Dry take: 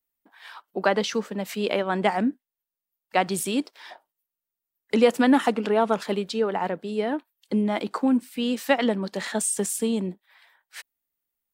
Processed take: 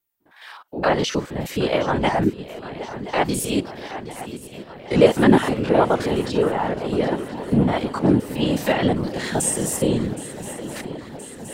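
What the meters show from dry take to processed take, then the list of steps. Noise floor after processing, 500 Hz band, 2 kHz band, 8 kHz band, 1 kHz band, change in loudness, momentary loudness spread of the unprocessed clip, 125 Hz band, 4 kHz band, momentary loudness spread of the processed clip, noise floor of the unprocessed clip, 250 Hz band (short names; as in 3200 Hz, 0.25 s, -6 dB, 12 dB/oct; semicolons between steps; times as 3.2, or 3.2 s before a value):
-44 dBFS, +4.5 dB, +2.5 dB, +3.5 dB, +3.0 dB, +3.5 dB, 9 LU, +12.0 dB, +3.5 dB, 16 LU, under -85 dBFS, +4.0 dB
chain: stepped spectrum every 50 ms; swung echo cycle 1.023 s, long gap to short 3:1, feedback 68%, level -15 dB; whisperiser; gain +5 dB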